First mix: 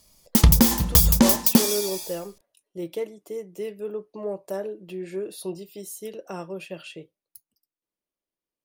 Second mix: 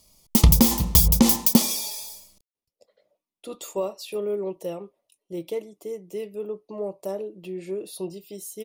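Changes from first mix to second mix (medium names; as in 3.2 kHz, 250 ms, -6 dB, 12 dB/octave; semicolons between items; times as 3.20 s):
speech: entry +2.55 s; master: add peaking EQ 1.6 kHz -14.5 dB 0.3 oct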